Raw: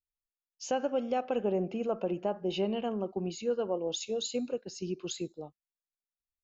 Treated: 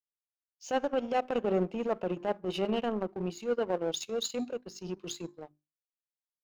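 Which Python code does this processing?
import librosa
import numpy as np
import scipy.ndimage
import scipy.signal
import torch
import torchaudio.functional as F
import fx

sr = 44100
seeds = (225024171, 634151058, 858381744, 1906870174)

y = fx.hum_notches(x, sr, base_hz=50, count=8)
y = fx.transient(y, sr, attack_db=-7, sustain_db=-3)
y = fx.power_curve(y, sr, exponent=1.4)
y = y * 10.0 ** (6.0 / 20.0)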